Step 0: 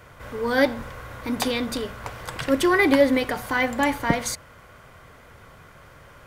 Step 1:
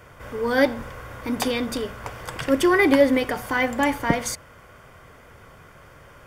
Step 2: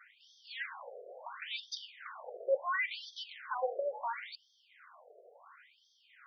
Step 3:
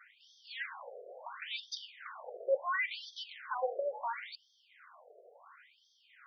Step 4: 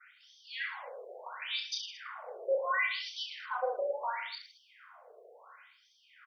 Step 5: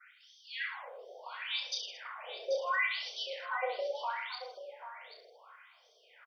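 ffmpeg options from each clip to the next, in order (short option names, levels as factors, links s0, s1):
-af "equalizer=f=390:w=1.5:g=2,bandreject=f=4000:w=8.2"
-filter_complex "[0:a]acrossover=split=500|6200[s0][s1][s2];[s1]asoftclip=type=tanh:threshold=0.0562[s3];[s0][s3][s2]amix=inputs=3:normalize=0,afftfilt=real='re*between(b*sr/1024,500*pow(4500/500,0.5+0.5*sin(2*PI*0.72*pts/sr))/1.41,500*pow(4500/500,0.5+0.5*sin(2*PI*0.72*pts/sr))*1.41)':imag='im*between(b*sr/1024,500*pow(4500/500,0.5+0.5*sin(2*PI*0.72*pts/sr))/1.41,500*pow(4500/500,0.5+0.5*sin(2*PI*0.72*pts/sr))*1.41)':win_size=1024:overlap=0.75,volume=0.631"
-af anull
-af "aecho=1:1:30|66|109.2|161|223.2:0.631|0.398|0.251|0.158|0.1,adynamicequalizer=threshold=0.00316:dfrequency=2300:dqfactor=0.7:tfrequency=2300:tqfactor=0.7:attack=5:release=100:ratio=0.375:range=2:mode=boostabove:tftype=highshelf"
-af "lowshelf=f=300:g=-11.5,aecho=1:1:786:0.282"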